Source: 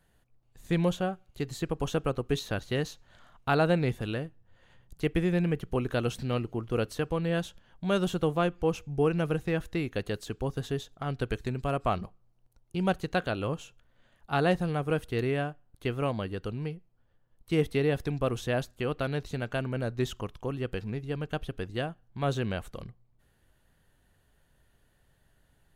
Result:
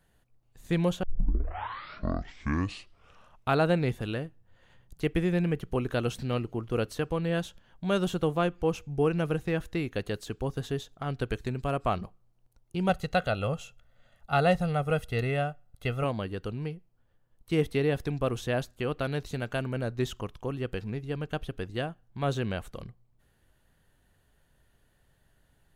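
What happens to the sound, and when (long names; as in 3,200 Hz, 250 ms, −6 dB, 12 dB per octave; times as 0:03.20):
0:01.03: tape start 2.57 s
0:12.89–0:16.04: comb filter 1.5 ms
0:19.05–0:19.78: high-shelf EQ 5,900 Hz +4.5 dB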